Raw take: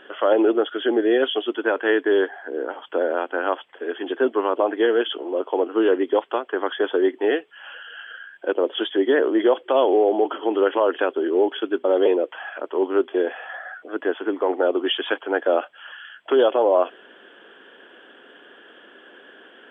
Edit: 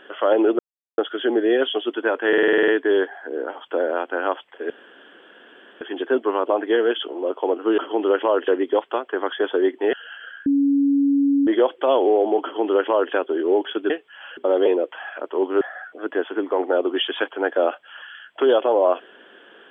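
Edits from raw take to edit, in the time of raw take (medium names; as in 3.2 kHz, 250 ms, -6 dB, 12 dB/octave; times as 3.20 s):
0.59 s: insert silence 0.39 s
1.89 s: stutter 0.05 s, 9 plays
3.91 s: insert room tone 1.11 s
7.33–7.80 s: move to 11.77 s
8.33–9.34 s: bleep 280 Hz -14.5 dBFS
10.30–11.00 s: copy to 5.88 s
13.01–13.51 s: delete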